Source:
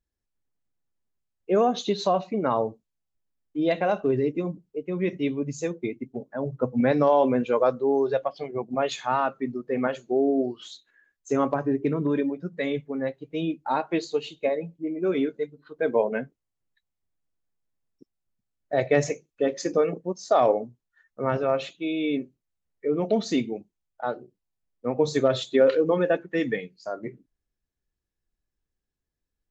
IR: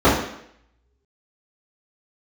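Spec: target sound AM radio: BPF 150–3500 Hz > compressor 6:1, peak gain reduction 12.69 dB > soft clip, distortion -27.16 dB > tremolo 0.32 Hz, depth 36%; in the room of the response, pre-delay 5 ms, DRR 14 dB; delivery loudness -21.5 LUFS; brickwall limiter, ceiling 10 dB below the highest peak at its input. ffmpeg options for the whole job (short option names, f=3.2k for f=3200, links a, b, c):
-filter_complex "[0:a]alimiter=limit=-19dB:level=0:latency=1,asplit=2[a][b];[1:a]atrim=start_sample=2205,adelay=5[c];[b][c]afir=irnorm=-1:irlink=0,volume=-39.5dB[d];[a][d]amix=inputs=2:normalize=0,highpass=150,lowpass=3.5k,acompressor=threshold=-33dB:ratio=6,asoftclip=threshold=-23.5dB,tremolo=f=0.32:d=0.36,volume=18.5dB"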